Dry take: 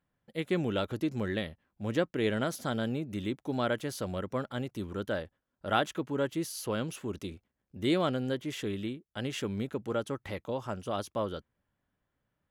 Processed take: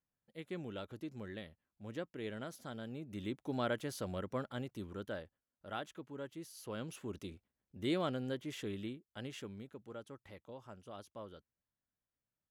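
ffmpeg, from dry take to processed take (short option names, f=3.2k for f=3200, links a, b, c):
-af "volume=2dB,afade=t=in:st=2.88:d=0.52:silence=0.398107,afade=t=out:st=4.36:d=1.34:silence=0.354813,afade=t=in:st=6.53:d=0.49:silence=0.421697,afade=t=out:st=8.92:d=0.73:silence=0.354813"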